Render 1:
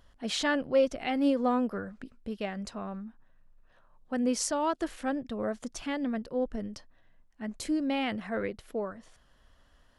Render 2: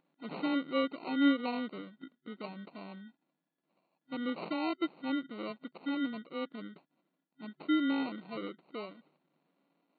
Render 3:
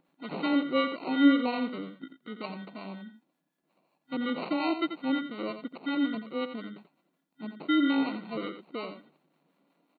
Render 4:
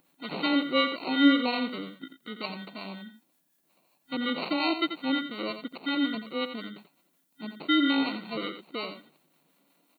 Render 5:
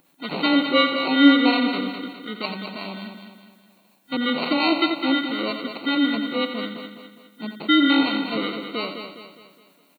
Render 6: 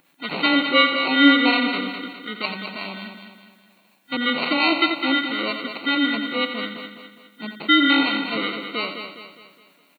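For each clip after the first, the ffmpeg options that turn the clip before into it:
ffmpeg -i in.wav -af "superequalizer=6b=2.82:10b=0.316,acrusher=samples=26:mix=1:aa=0.000001,afftfilt=real='re*between(b*sr/4096,140,4500)':imag='im*between(b*sr/4096,140,4500)':win_size=4096:overlap=0.75,volume=-8.5dB" out.wav
ffmpeg -i in.wav -filter_complex "[0:a]acontrast=87,acrossover=split=780[link_01][link_02];[link_01]aeval=exprs='val(0)*(1-0.5/2+0.5/2*cos(2*PI*5.5*n/s))':channel_layout=same[link_03];[link_02]aeval=exprs='val(0)*(1-0.5/2-0.5/2*cos(2*PI*5.5*n/s))':channel_layout=same[link_04];[link_03][link_04]amix=inputs=2:normalize=0,asplit=2[link_05][link_06];[link_06]aecho=0:1:87:0.335[link_07];[link_05][link_07]amix=inputs=2:normalize=0" out.wav
ffmpeg -i in.wav -af "crystalizer=i=4.5:c=0" out.wav
ffmpeg -i in.wav -af "aecho=1:1:206|412|618|824|1030:0.398|0.179|0.0806|0.0363|0.0163,volume=6.5dB" out.wav
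ffmpeg -i in.wav -af "equalizer=frequency=2100:width_type=o:width=1.8:gain=7.5,volume=-2dB" out.wav

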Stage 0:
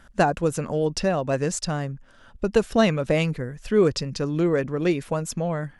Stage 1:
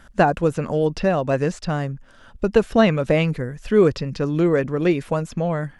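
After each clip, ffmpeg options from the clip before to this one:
ffmpeg -i in.wav -filter_complex "[0:a]acrossover=split=3700[link_01][link_02];[link_02]acompressor=threshold=-48dB:ratio=4:attack=1:release=60[link_03];[link_01][link_03]amix=inputs=2:normalize=0,volume=3.5dB" out.wav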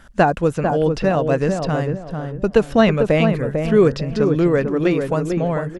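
ffmpeg -i in.wav -filter_complex "[0:a]asplit=2[link_01][link_02];[link_02]adelay=447,lowpass=frequency=1100:poles=1,volume=-4.5dB,asplit=2[link_03][link_04];[link_04]adelay=447,lowpass=frequency=1100:poles=1,volume=0.33,asplit=2[link_05][link_06];[link_06]adelay=447,lowpass=frequency=1100:poles=1,volume=0.33,asplit=2[link_07][link_08];[link_08]adelay=447,lowpass=frequency=1100:poles=1,volume=0.33[link_09];[link_01][link_03][link_05][link_07][link_09]amix=inputs=5:normalize=0,volume=1.5dB" out.wav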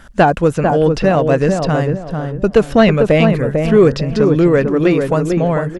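ffmpeg -i in.wav -af "asoftclip=type=tanh:threshold=-6dB,volume=5.5dB" out.wav

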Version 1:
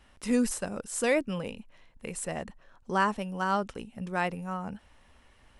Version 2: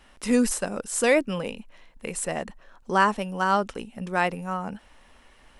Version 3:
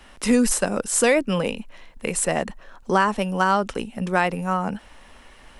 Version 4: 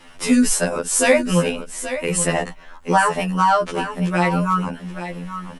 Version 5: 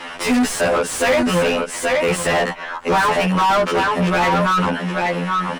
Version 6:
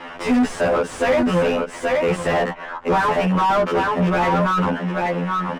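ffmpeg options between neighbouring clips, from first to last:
ffmpeg -i in.wav -af "equalizer=frequency=92:width_type=o:width=1.3:gain=-10.5,volume=6dB" out.wav
ffmpeg -i in.wav -filter_complex "[0:a]acrossover=split=120[link_01][link_02];[link_02]acompressor=threshold=-22dB:ratio=4[link_03];[link_01][link_03]amix=inputs=2:normalize=0,volume=7dB" out.wav
ffmpeg -i in.wav -af "aecho=1:1:828:0.282,afftfilt=real='re*2*eq(mod(b,4),0)':imag='im*2*eq(mod(b,4),0)':win_size=2048:overlap=0.75,volume=5.5dB" out.wav
ffmpeg -i in.wav -filter_complex "[0:a]asplit=2[link_01][link_02];[link_02]highpass=frequency=720:poles=1,volume=33dB,asoftclip=type=tanh:threshold=-2dB[link_03];[link_01][link_03]amix=inputs=2:normalize=0,lowpass=frequency=2000:poles=1,volume=-6dB,volume=-6.5dB" out.wav
ffmpeg -i in.wav -af "adynamicsmooth=sensitivity=7:basefreq=4600,highshelf=frequency=2100:gain=-10,bandreject=frequency=4200:width=27" out.wav

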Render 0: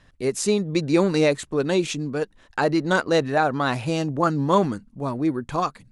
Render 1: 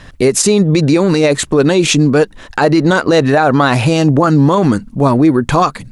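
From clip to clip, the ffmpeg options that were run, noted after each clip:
ffmpeg -i in.wav -filter_complex "[0:a]asplit=2[link_01][link_02];[link_02]acompressor=threshold=-27dB:ratio=6,volume=0dB[link_03];[link_01][link_03]amix=inputs=2:normalize=0,alimiter=level_in=14.5dB:limit=-1dB:release=50:level=0:latency=1,volume=-1dB" out.wav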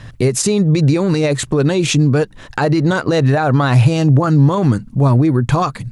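ffmpeg -i in.wav -filter_complex "[0:a]equalizer=frequency=120:width_type=o:width=0.62:gain=13.5,asplit=2[link_01][link_02];[link_02]acompressor=threshold=-15dB:ratio=6,volume=-1dB[link_03];[link_01][link_03]amix=inputs=2:normalize=0,volume=-8dB" out.wav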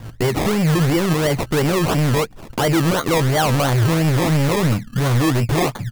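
ffmpeg -i in.wav -filter_complex "[0:a]asoftclip=type=hard:threshold=-14.5dB,asplit=2[link_01][link_02];[link_02]adelay=18,volume=-13dB[link_03];[link_01][link_03]amix=inputs=2:normalize=0,acrusher=samples=24:mix=1:aa=0.000001:lfo=1:lforange=14.4:lforate=2.9" out.wav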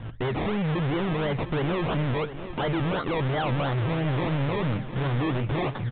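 ffmpeg -i in.wav -af "asoftclip=type=tanh:threshold=-22.5dB,aecho=1:1:708|1416|2124|2832:0.237|0.0901|0.0342|0.013,aresample=8000,aresample=44100,volume=-2dB" out.wav

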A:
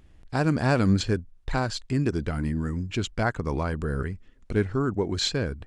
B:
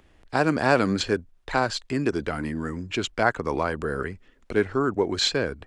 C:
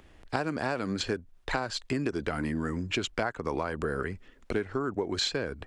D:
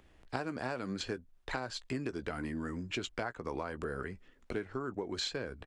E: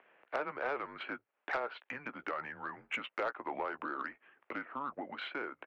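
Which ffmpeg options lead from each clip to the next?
ffmpeg -i in.wav -filter_complex "[0:a]bass=frequency=250:gain=-11,treble=frequency=4000:gain=-4,acrossover=split=150|1100[link_01][link_02][link_03];[link_01]alimiter=level_in=15.5dB:limit=-24dB:level=0:latency=1,volume=-15.5dB[link_04];[link_04][link_02][link_03]amix=inputs=3:normalize=0,volume=5.5dB" out.wav
ffmpeg -i in.wav -af "acompressor=threshold=-28dB:ratio=12,volume=2dB" out.wav
ffmpeg -i in.wav -filter_complex "[0:a]asplit=2[link_01][link_02];[link_02]adelay=16,volume=-13dB[link_03];[link_01][link_03]amix=inputs=2:normalize=0,volume=-7dB" out.wav
ffmpeg -i in.wav -af "highpass=frequency=600:width_type=q:width=0.5412,highpass=frequency=600:width_type=q:width=1.307,lowpass=frequency=2800:width_type=q:width=0.5176,lowpass=frequency=2800:width_type=q:width=0.7071,lowpass=frequency=2800:width_type=q:width=1.932,afreqshift=-140,asoftclip=type=tanh:threshold=-30.5dB,volume=5.5dB" out.wav

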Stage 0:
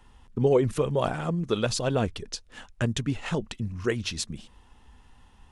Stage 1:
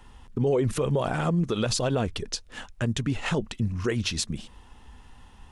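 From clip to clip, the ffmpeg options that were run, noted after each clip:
ffmpeg -i in.wav -af "alimiter=limit=-21.5dB:level=0:latency=1:release=81,volume=5dB" out.wav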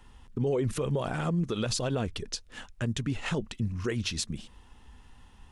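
ffmpeg -i in.wav -af "equalizer=frequency=750:width_type=o:width=1.4:gain=-2.5,volume=-3.5dB" out.wav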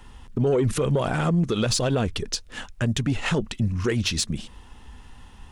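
ffmpeg -i in.wav -af "asoftclip=type=tanh:threshold=-21dB,volume=8dB" out.wav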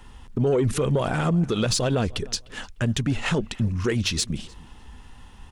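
ffmpeg -i in.wav -filter_complex "[0:a]asplit=2[link_01][link_02];[link_02]adelay=301,lowpass=frequency=3500:poles=1,volume=-22dB,asplit=2[link_03][link_04];[link_04]adelay=301,lowpass=frequency=3500:poles=1,volume=0.24[link_05];[link_01][link_03][link_05]amix=inputs=3:normalize=0" out.wav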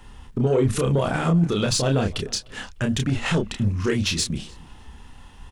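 ffmpeg -i in.wav -filter_complex "[0:a]asplit=2[link_01][link_02];[link_02]adelay=30,volume=-4dB[link_03];[link_01][link_03]amix=inputs=2:normalize=0" out.wav

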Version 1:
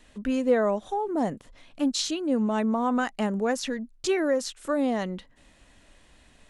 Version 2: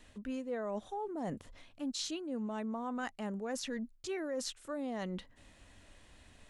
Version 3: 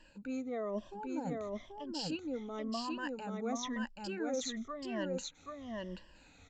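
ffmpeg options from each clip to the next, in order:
ffmpeg -i in.wav -af "areverse,acompressor=threshold=-33dB:ratio=6,areverse,equalizer=frequency=89:width=5.4:gain=9.5,volume=-3dB" out.wav
ffmpeg -i in.wav -af "afftfilt=real='re*pow(10,18/40*sin(2*PI*(1.3*log(max(b,1)*sr/1024/100)/log(2)-(-0.98)*(pts-256)/sr)))':imag='im*pow(10,18/40*sin(2*PI*(1.3*log(max(b,1)*sr/1024/100)/log(2)-(-0.98)*(pts-256)/sr)))':win_size=1024:overlap=0.75,aecho=1:1:782:0.708,aresample=16000,aresample=44100,volume=-4.5dB" out.wav

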